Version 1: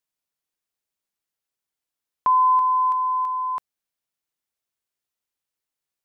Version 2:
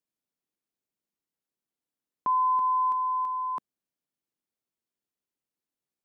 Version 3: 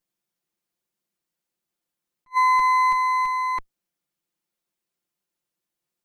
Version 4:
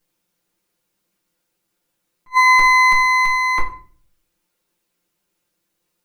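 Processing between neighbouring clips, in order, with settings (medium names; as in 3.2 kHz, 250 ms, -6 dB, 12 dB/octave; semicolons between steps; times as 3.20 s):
peaking EQ 250 Hz +13 dB 2.2 oct; peak limiter -13 dBFS, peak gain reduction 4 dB; trim -7.5 dB
comb filter that takes the minimum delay 5.7 ms; attacks held to a fixed rise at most 540 dB/s; trim +7.5 dB
simulated room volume 40 m³, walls mixed, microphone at 0.53 m; trim +9 dB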